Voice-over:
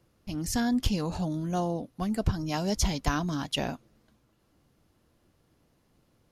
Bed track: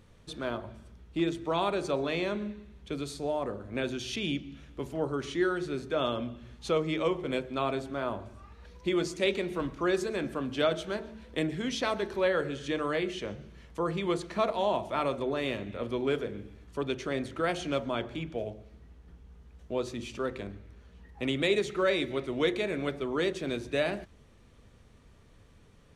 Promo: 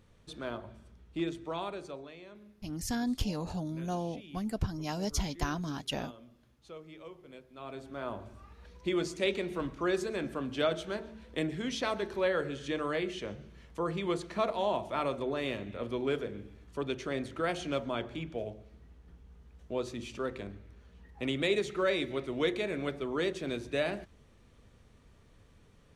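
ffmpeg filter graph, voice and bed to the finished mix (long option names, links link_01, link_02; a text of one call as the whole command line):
ffmpeg -i stem1.wav -i stem2.wav -filter_complex "[0:a]adelay=2350,volume=-5.5dB[link_01];[1:a]volume=12.5dB,afade=type=out:start_time=1.21:duration=0.94:silence=0.177828,afade=type=in:start_time=7.54:duration=0.76:silence=0.141254[link_02];[link_01][link_02]amix=inputs=2:normalize=0" out.wav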